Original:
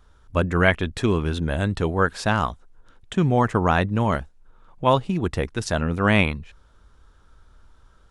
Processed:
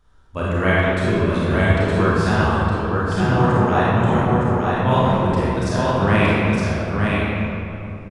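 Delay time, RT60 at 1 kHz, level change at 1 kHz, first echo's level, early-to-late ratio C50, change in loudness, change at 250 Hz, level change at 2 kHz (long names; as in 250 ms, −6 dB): 914 ms, 2.8 s, +5.0 dB, −3.5 dB, −6.5 dB, +4.0 dB, +5.5 dB, +4.0 dB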